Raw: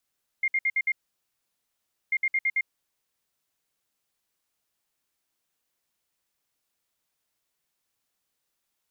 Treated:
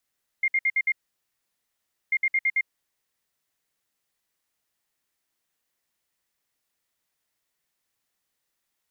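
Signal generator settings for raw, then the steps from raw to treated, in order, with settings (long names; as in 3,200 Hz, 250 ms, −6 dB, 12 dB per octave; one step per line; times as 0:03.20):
beeps in groups sine 2,120 Hz, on 0.05 s, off 0.06 s, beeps 5, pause 1.20 s, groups 2, −21 dBFS
parametric band 1,900 Hz +5 dB 0.25 octaves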